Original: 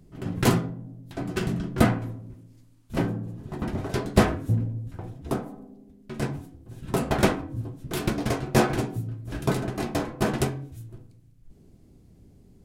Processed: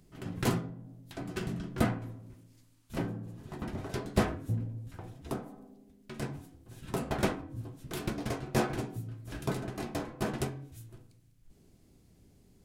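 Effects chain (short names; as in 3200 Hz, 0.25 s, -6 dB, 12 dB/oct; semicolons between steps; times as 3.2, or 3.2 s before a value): mismatched tape noise reduction encoder only; gain -8.5 dB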